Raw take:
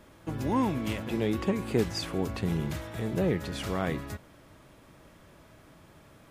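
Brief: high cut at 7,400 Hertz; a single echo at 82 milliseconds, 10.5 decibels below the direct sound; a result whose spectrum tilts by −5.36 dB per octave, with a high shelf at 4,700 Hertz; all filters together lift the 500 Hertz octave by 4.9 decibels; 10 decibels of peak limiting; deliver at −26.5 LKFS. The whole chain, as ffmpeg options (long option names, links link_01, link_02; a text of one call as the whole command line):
ffmpeg -i in.wav -af "lowpass=7400,equalizer=frequency=500:width_type=o:gain=6,highshelf=frequency=4700:gain=6.5,alimiter=limit=-20.5dB:level=0:latency=1,aecho=1:1:82:0.299,volume=5dB" out.wav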